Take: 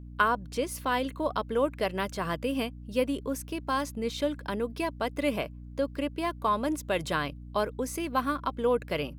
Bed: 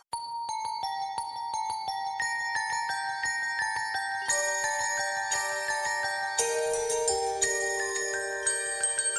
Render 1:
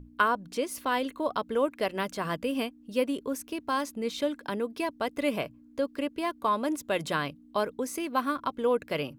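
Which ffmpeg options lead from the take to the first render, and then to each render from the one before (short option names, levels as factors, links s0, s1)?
-af "bandreject=f=60:t=h:w=6,bandreject=f=120:t=h:w=6,bandreject=f=180:t=h:w=6"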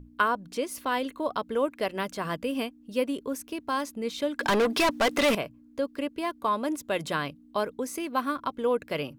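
-filter_complex "[0:a]asettb=1/sr,asplit=3[s0][s1][s2];[s0]atrim=end=4.394[s3];[s1]atrim=start=4.39:end=5.35,asetpts=PTS-STARTPTS,afade=t=in:d=0.004:c=qsin,afade=t=out:st=0.956:d=0.004:c=qsin,asplit=2[s4][s5];[s5]highpass=f=720:p=1,volume=31.6,asoftclip=type=tanh:threshold=0.168[s6];[s4][s6]amix=inputs=2:normalize=0,lowpass=f=6600:p=1,volume=0.501[s7];[s2]atrim=start=5.346[s8];[s3][s7]acrossfade=d=0.004:c1=hsin:c2=qsin[s9];[s9][s8]acrossfade=d=0.004:c1=qsin:c2=hsin"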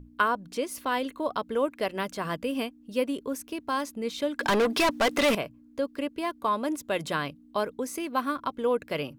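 -af anull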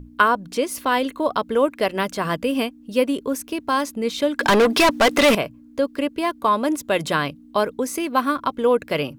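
-af "volume=2.51"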